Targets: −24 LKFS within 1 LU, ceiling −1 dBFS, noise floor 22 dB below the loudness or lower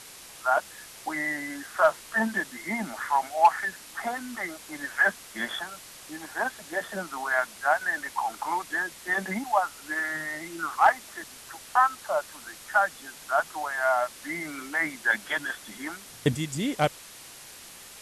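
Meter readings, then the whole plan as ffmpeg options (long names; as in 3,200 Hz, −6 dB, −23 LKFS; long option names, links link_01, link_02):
background noise floor −47 dBFS; target noise floor −50 dBFS; integrated loudness −28.0 LKFS; sample peak −9.0 dBFS; target loudness −24.0 LKFS
→ -af "afftdn=noise_reduction=6:noise_floor=-47"
-af "volume=4dB"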